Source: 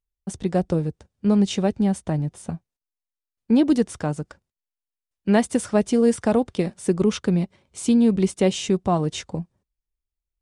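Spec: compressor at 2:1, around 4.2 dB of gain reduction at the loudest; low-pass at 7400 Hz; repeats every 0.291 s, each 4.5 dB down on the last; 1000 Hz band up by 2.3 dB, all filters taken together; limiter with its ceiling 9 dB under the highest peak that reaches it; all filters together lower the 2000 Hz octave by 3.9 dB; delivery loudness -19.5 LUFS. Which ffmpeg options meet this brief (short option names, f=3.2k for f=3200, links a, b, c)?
-af "lowpass=7.4k,equalizer=f=1k:t=o:g=4.5,equalizer=f=2k:t=o:g=-6.5,acompressor=threshold=-21dB:ratio=2,alimiter=limit=-19.5dB:level=0:latency=1,aecho=1:1:291|582|873|1164|1455|1746|2037|2328|2619:0.596|0.357|0.214|0.129|0.0772|0.0463|0.0278|0.0167|0.01,volume=9dB"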